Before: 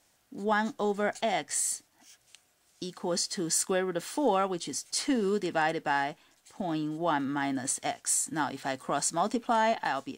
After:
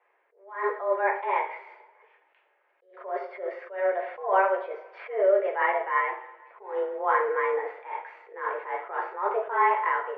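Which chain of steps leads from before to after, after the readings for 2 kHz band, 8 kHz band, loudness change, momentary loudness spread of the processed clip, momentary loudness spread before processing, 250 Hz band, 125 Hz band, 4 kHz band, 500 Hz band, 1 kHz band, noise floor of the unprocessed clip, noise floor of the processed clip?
+4.0 dB, below −40 dB, +2.5 dB, 15 LU, 8 LU, −14.5 dB, below −40 dB, below −15 dB, +4.5 dB, +4.0 dB, −69 dBFS, −69 dBFS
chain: single-sideband voice off tune +190 Hz 190–2,100 Hz
coupled-rooms reverb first 0.46 s, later 1.6 s, from −18 dB, DRR −0.5 dB
level that may rise only so fast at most 130 dB per second
level +2 dB

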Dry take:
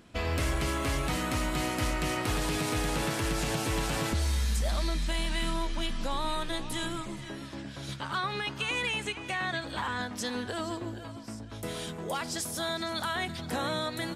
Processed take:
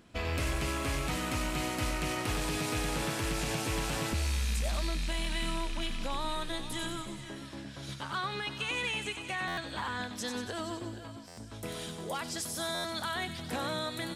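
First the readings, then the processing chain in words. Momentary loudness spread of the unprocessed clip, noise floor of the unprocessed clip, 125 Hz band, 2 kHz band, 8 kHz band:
9 LU, −42 dBFS, −3.0 dB, −2.5 dB, −1.5 dB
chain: loose part that buzzes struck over −33 dBFS, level −28 dBFS
delay with a high-pass on its return 94 ms, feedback 63%, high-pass 3,100 Hz, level −6 dB
buffer that repeats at 0:09.47/0:11.27/0:12.74, samples 512, times 8
level −3 dB

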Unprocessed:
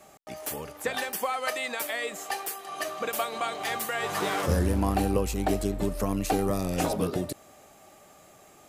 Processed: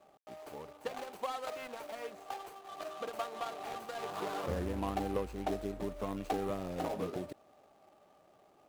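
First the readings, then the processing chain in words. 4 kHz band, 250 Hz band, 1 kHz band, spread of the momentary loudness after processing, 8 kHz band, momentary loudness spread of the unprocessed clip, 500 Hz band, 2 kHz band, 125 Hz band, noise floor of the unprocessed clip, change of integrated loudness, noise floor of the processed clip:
−13.0 dB, −10.5 dB, −8.0 dB, 11 LU, −18.5 dB, 9 LU, −8.0 dB, −15.0 dB, −13.5 dB, −55 dBFS, −10.5 dB, −65 dBFS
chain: running median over 25 samples
low-shelf EQ 290 Hz −10.5 dB
level −4.5 dB

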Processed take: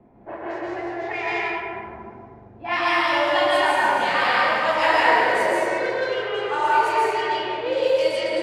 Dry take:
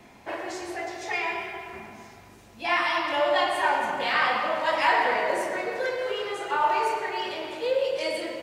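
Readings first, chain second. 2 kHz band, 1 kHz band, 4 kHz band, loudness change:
+5.5 dB, +5.0 dB, +4.5 dB, +5.0 dB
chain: dense smooth reverb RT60 1.3 s, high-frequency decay 0.85×, pre-delay 120 ms, DRR −3.5 dB
low-pass that shuts in the quiet parts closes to 620 Hz, open at −16.5 dBFS

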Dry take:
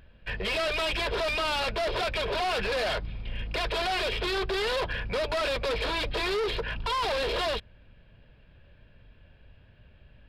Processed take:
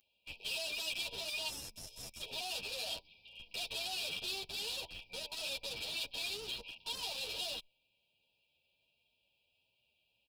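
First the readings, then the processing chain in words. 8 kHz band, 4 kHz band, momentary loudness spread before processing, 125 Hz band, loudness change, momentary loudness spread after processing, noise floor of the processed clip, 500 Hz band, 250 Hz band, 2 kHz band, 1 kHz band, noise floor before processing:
+0.5 dB, −6.0 dB, 5 LU, −21.5 dB, −10.5 dB, 8 LU, −80 dBFS, −21.0 dB, −19.5 dB, −13.0 dB, −20.5 dB, −57 dBFS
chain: gain on a spectral selection 0:01.49–0:02.21, 220–5,000 Hz −15 dB
first difference
brick-wall band-stop 970–2,300 Hz
in parallel at −9 dB: comparator with hysteresis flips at −40.5 dBFS
on the sum: barber-pole flanger 9.4 ms +2.2 Hz
level +2.5 dB

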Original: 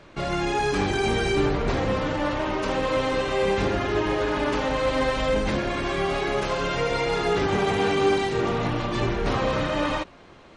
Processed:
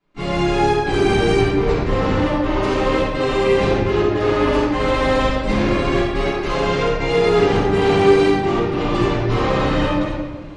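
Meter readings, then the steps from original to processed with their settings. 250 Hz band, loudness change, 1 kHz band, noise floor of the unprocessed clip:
+8.0 dB, +6.5 dB, +5.5 dB, −49 dBFS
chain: gate pattern ".xxxx.xxxx.x.xxx" 105 BPM −24 dB
rectangular room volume 860 cubic metres, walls mixed, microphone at 9.9 metres
level −9.5 dB

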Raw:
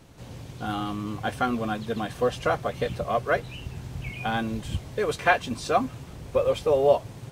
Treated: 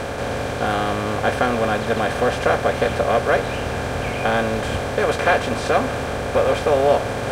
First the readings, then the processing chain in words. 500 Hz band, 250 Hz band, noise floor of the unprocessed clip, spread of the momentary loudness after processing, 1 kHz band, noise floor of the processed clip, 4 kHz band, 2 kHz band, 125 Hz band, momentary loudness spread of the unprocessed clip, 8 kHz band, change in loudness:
+7.0 dB, +5.5 dB, −43 dBFS, 7 LU, +7.0 dB, −26 dBFS, +8.0 dB, +8.0 dB, +7.0 dB, 14 LU, +9.0 dB, +6.5 dB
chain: compressor on every frequency bin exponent 0.4
reversed playback
upward compression, threshold −21 dBFS
reversed playback

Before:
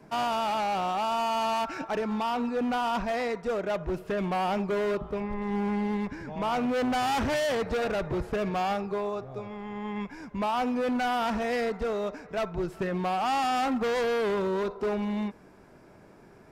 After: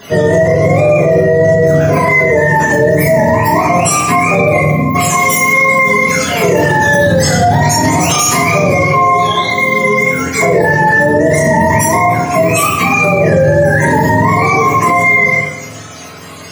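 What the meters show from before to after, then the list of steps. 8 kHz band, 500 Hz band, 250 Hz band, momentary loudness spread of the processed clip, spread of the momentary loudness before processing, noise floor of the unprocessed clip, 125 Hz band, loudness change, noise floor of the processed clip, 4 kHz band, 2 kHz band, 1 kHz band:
+30.5 dB, +18.5 dB, +15.5 dB, 3 LU, 7 LU, −53 dBFS, +26.0 dB, +19.5 dB, −28 dBFS, +15.5 dB, +25.5 dB, +17.0 dB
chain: frequency axis turned over on the octave scale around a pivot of 660 Hz
parametric band 6,200 Hz +13.5 dB 0.55 octaves
gain on a spectral selection 0:04.61–0:04.95, 260–11,000 Hz −21 dB
multi-voice chorus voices 6, 0.39 Hz, delay 28 ms, depth 1.6 ms
high-shelf EQ 3,800 Hz +9 dB
rectangular room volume 470 cubic metres, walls mixed, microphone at 1.4 metres
boost into a limiter +25.5 dB
level −1 dB

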